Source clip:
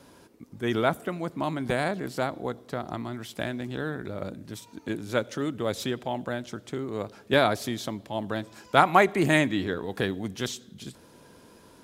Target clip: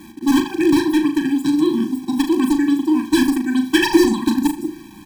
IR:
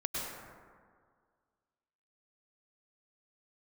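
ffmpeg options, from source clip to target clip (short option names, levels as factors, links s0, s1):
-filter_complex "[0:a]lowshelf=f=200:t=q:w=3:g=12.5,asplit=2[s0][s1];[s1]aeval=exprs='(mod(5.01*val(0)+1,2)-1)/5.01':c=same,volume=0.501[s2];[s0][s2]amix=inputs=2:normalize=0,acrusher=bits=6:mix=0:aa=0.000001,asplit=2[s3][s4];[s4]adelay=91,lowpass=f=3000:p=1,volume=0.501,asplit=2[s5][s6];[s6]adelay=91,lowpass=f=3000:p=1,volume=0.45,asplit=2[s7][s8];[s8]adelay=91,lowpass=f=3000:p=1,volume=0.45,asplit=2[s9][s10];[s10]adelay=91,lowpass=f=3000:p=1,volume=0.45,asplit=2[s11][s12];[s12]adelay=91,lowpass=f=3000:p=1,volume=0.45[s13];[s5][s7][s9][s11][s13]amix=inputs=5:normalize=0[s14];[s3][s14]amix=inputs=2:normalize=0,asetrate=103194,aresample=44100,afftfilt=real='re*eq(mod(floor(b*sr/1024/380),2),0)':imag='im*eq(mod(floor(b*sr/1024/380),2),0)':win_size=1024:overlap=0.75,volume=1.19"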